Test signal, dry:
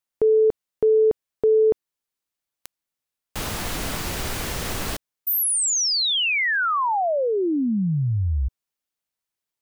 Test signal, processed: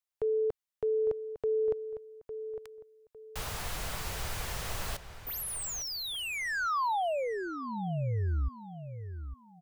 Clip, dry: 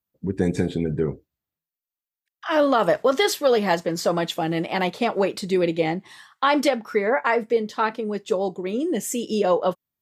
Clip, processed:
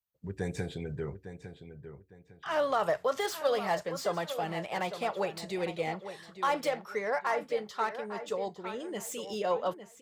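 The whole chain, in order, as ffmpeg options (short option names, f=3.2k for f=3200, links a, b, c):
-filter_complex "[0:a]equalizer=f=270:t=o:w=1.2:g=-14,acrossover=split=530|1300[a][b][c];[c]asoftclip=type=tanh:threshold=-30.5dB[d];[a][b][d]amix=inputs=3:normalize=0,asplit=2[e][f];[f]adelay=855,lowpass=f=3.7k:p=1,volume=-10.5dB,asplit=2[g][h];[h]adelay=855,lowpass=f=3.7k:p=1,volume=0.3,asplit=2[i][j];[j]adelay=855,lowpass=f=3.7k:p=1,volume=0.3[k];[e][g][i][k]amix=inputs=4:normalize=0,volume=-6dB"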